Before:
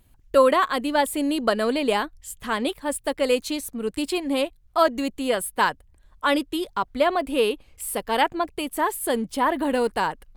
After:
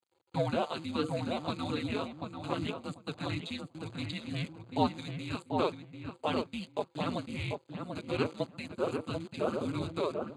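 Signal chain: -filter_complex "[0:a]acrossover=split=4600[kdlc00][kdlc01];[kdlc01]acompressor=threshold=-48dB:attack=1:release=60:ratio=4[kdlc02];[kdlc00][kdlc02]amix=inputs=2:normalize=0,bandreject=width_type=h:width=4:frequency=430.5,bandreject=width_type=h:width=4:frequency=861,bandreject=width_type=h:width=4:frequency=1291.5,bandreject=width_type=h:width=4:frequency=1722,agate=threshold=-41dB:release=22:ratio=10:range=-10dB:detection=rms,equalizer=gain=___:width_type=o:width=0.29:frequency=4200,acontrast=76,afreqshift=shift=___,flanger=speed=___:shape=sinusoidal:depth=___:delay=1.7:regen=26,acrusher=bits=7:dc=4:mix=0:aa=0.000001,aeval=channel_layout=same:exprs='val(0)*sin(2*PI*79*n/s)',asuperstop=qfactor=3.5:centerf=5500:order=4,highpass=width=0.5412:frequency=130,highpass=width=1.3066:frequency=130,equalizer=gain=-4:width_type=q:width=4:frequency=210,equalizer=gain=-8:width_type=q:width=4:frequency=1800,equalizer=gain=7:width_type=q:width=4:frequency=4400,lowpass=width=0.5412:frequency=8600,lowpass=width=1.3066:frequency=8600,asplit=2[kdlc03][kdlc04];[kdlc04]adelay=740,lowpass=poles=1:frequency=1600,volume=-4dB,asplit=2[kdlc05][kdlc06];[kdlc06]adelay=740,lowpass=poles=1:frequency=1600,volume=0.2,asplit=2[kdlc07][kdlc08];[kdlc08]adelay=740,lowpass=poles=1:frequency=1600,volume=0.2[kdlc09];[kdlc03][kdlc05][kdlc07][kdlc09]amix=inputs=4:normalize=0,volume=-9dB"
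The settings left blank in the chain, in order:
3.5, -470, 0.69, 5.6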